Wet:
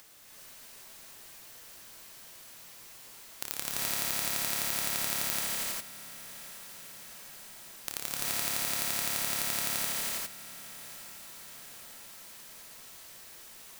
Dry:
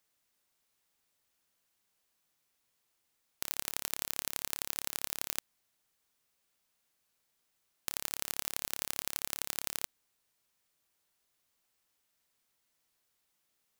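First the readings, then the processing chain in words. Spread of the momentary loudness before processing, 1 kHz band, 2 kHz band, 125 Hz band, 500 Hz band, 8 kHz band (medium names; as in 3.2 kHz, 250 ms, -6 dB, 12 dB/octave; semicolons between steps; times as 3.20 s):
4 LU, +7.5 dB, +8.0 dB, +9.0 dB, +7.5 dB, +7.0 dB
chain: upward compressor, threshold -38 dBFS; echo that smears into a reverb 817 ms, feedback 62%, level -15.5 dB; gated-style reverb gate 430 ms rising, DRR -5.5 dB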